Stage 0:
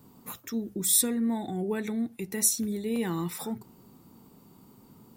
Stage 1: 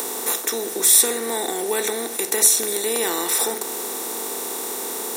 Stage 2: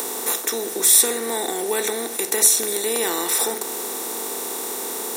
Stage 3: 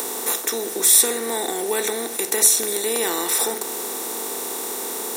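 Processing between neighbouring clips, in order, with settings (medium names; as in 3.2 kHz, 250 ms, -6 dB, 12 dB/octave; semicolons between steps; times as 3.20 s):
spectral levelling over time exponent 0.4; high-pass 370 Hz 24 dB/octave; in parallel at +1 dB: upward compressor, threshold -28 dBFS
no audible change
word length cut 8-bit, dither none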